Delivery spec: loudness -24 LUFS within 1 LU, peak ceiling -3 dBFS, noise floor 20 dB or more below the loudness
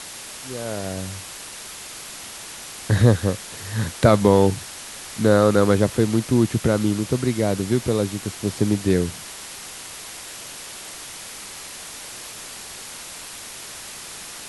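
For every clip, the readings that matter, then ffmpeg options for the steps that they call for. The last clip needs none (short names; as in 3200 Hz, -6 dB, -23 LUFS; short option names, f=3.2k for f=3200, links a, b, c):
noise floor -37 dBFS; noise floor target -41 dBFS; loudness -21.0 LUFS; peak -1.0 dBFS; loudness target -24.0 LUFS
-> -af "afftdn=nr=6:nf=-37"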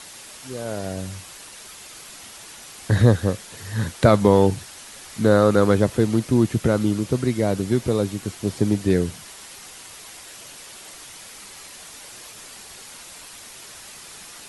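noise floor -42 dBFS; loudness -21.0 LUFS; peak -1.0 dBFS; loudness target -24.0 LUFS
-> -af "volume=-3dB"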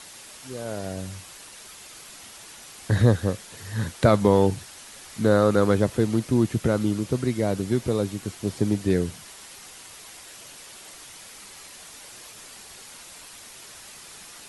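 loudness -24.0 LUFS; peak -4.0 dBFS; noise floor -45 dBFS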